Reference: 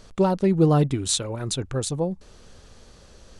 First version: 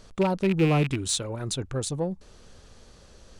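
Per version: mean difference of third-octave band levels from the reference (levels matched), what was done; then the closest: 2.0 dB: rattling part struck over -23 dBFS, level -18 dBFS; in parallel at -8.5 dB: soft clip -23 dBFS, distortion -7 dB; on the sum: gain -5 dB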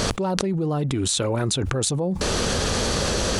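13.5 dB: HPF 100 Hz 6 dB/oct; fast leveller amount 100%; gain -8.5 dB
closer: first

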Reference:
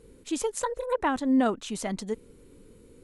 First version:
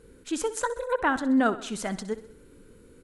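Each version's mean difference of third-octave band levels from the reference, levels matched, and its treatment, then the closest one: 2.5 dB: bell 1500 Hz +9.5 dB 0.4 oct; feedback echo 64 ms, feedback 55%, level -15.5 dB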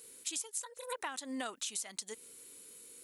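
10.0 dB: differentiator; compressor 16:1, threshold -49 dBFS, peak gain reduction 19.5 dB; gain +13.5 dB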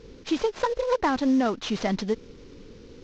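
5.5 dB: CVSD 32 kbps; compressor 4:1, threshold -27 dBFS, peak gain reduction 7.5 dB; gain +7 dB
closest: first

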